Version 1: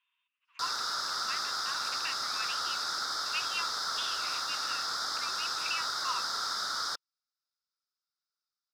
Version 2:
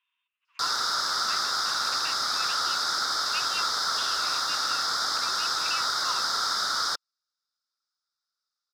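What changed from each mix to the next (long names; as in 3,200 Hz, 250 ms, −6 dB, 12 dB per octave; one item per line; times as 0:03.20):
background +6.5 dB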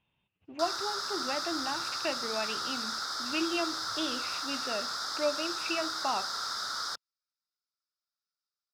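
speech: remove linear-phase brick-wall high-pass 940 Hz
background −8.0 dB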